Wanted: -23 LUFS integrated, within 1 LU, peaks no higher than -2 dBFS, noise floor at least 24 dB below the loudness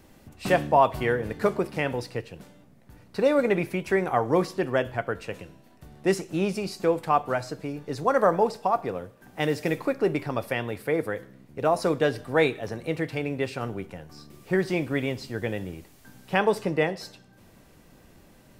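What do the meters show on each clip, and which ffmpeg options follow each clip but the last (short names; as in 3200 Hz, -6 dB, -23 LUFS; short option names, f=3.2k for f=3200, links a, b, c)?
loudness -26.5 LUFS; peak -7.0 dBFS; loudness target -23.0 LUFS
-> -af "volume=3.5dB"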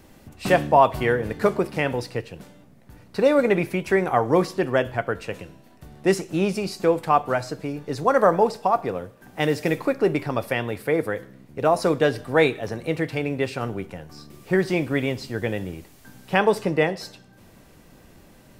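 loudness -23.0 LUFS; peak -3.5 dBFS; noise floor -52 dBFS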